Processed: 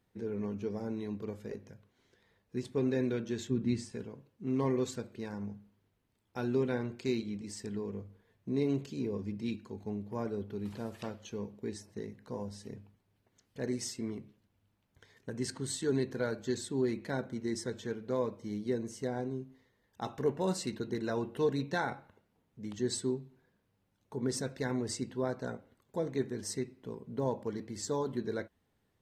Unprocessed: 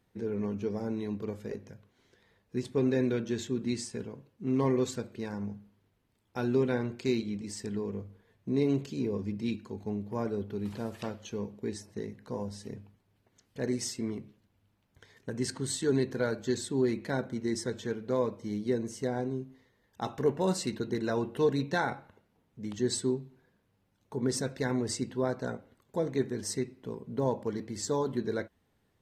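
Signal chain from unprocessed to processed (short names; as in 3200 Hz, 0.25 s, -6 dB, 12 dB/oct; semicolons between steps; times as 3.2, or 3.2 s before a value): 3.5–3.92 tone controls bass +8 dB, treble -6 dB; gain -3.5 dB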